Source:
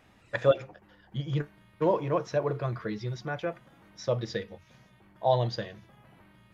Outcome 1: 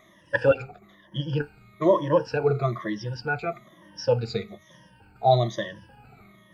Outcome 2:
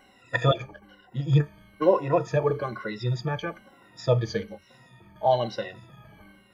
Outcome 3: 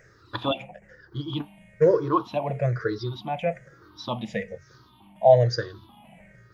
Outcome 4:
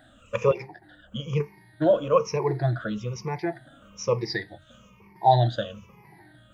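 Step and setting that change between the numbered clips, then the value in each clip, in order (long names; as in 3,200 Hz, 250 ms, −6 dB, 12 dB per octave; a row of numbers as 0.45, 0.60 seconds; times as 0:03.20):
rippled gain that drifts along the octave scale, ripples per octave: 1.2, 2.1, 0.54, 0.81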